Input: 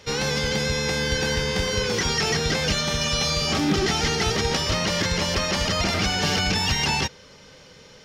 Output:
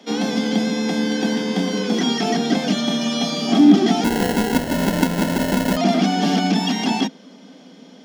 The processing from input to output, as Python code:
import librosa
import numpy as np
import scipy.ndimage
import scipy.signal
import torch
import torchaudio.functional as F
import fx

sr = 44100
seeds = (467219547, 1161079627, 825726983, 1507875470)

y = scipy.signal.sosfilt(scipy.signal.butter(16, 170.0, 'highpass', fs=sr, output='sos'), x)
y = fx.low_shelf(y, sr, hz=350.0, db=9.0)
y = fx.small_body(y, sr, hz=(260.0, 690.0, 3300.0), ring_ms=45, db=17)
y = fx.sample_hold(y, sr, seeds[0], rate_hz=1200.0, jitter_pct=0, at=(4.04, 5.77))
y = F.gain(torch.from_numpy(y), -4.5).numpy()